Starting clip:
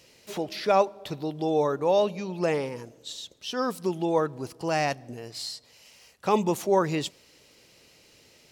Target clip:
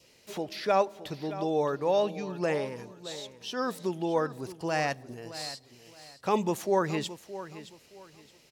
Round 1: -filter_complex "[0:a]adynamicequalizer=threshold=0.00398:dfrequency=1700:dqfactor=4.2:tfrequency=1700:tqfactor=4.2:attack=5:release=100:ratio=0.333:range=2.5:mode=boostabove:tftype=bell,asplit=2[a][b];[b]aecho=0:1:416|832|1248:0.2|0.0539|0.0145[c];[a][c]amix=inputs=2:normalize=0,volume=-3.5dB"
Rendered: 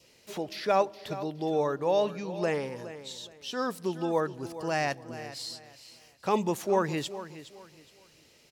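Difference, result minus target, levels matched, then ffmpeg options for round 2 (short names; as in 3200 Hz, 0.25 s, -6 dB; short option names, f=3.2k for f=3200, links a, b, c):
echo 0.204 s early
-filter_complex "[0:a]adynamicequalizer=threshold=0.00398:dfrequency=1700:dqfactor=4.2:tfrequency=1700:tqfactor=4.2:attack=5:release=100:ratio=0.333:range=2.5:mode=boostabove:tftype=bell,asplit=2[a][b];[b]aecho=0:1:620|1240|1860:0.2|0.0539|0.0145[c];[a][c]amix=inputs=2:normalize=0,volume=-3.5dB"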